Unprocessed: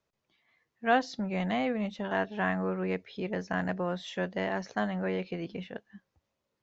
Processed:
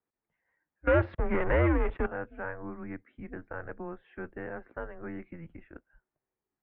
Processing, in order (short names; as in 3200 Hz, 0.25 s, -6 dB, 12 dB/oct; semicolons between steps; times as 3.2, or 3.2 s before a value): 0.87–2.06 sample leveller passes 5; mistuned SSB -170 Hz 220–2300 Hz; gain -6.5 dB